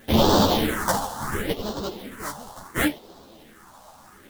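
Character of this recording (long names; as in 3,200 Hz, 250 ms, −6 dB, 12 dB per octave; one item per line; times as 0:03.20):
aliases and images of a low sample rate 2,500 Hz, jitter 20%
phaser sweep stages 4, 0.71 Hz, lowest notch 350–2,100 Hz
a quantiser's noise floor 10 bits, dither none
a shimmering, thickened sound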